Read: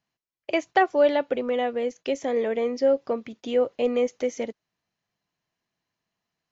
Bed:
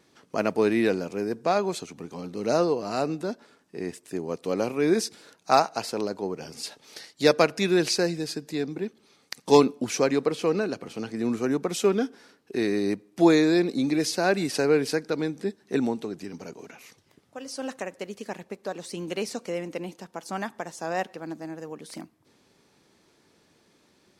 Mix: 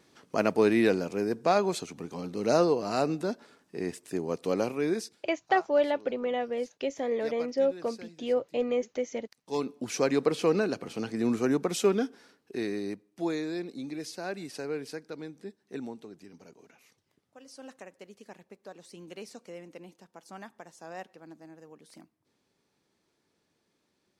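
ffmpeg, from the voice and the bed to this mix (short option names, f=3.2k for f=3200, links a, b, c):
-filter_complex "[0:a]adelay=4750,volume=-5dB[a];[1:a]volume=22dB,afade=t=out:st=4.48:d=0.77:silence=0.0749894,afade=t=in:st=9.45:d=0.85:silence=0.0749894,afade=t=out:st=11.48:d=1.72:silence=0.237137[b];[a][b]amix=inputs=2:normalize=0"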